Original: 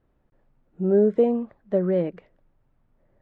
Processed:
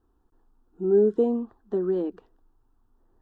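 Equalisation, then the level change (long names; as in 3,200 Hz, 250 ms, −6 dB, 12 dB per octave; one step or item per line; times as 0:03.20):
dynamic equaliser 1,100 Hz, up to −4 dB, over −37 dBFS, Q 1.1
phaser with its sweep stopped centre 580 Hz, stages 6
+2.0 dB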